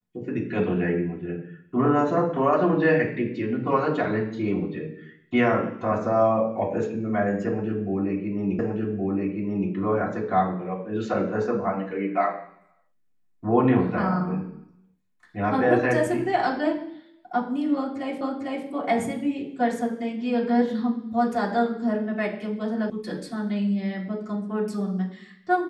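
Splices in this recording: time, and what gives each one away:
8.59 s: repeat of the last 1.12 s
18.21 s: repeat of the last 0.45 s
22.90 s: sound stops dead

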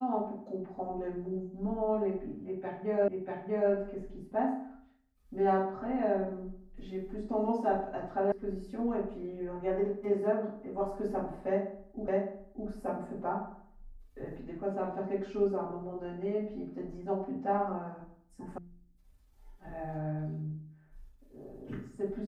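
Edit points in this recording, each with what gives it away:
3.08 s: repeat of the last 0.64 s
8.32 s: sound stops dead
12.08 s: repeat of the last 0.61 s
18.58 s: sound stops dead

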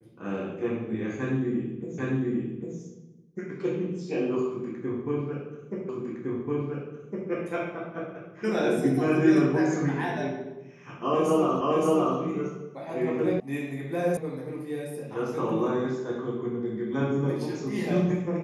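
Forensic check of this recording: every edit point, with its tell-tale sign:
1.98 s: repeat of the last 0.8 s
5.89 s: repeat of the last 1.41 s
11.61 s: repeat of the last 0.57 s
13.40 s: sound stops dead
14.17 s: sound stops dead

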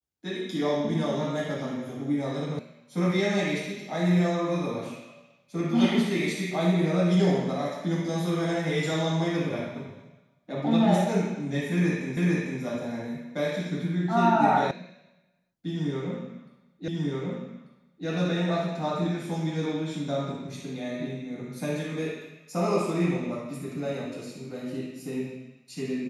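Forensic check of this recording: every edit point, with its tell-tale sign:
2.59 s: sound stops dead
12.17 s: repeat of the last 0.45 s
14.71 s: sound stops dead
16.88 s: repeat of the last 1.19 s

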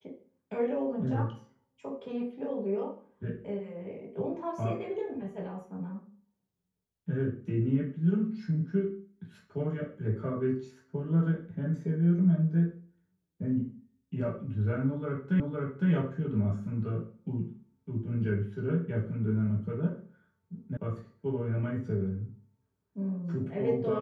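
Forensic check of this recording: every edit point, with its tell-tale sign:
15.40 s: repeat of the last 0.51 s
20.77 s: sound stops dead

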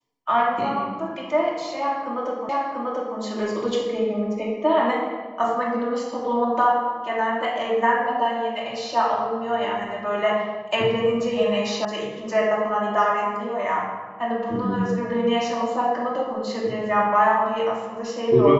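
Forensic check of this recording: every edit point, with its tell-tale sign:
2.49 s: repeat of the last 0.69 s
11.85 s: sound stops dead

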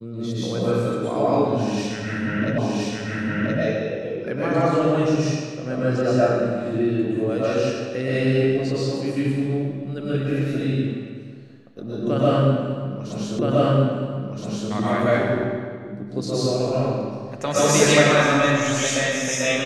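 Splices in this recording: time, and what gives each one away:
2.58 s: repeat of the last 1.02 s
13.39 s: repeat of the last 1.32 s

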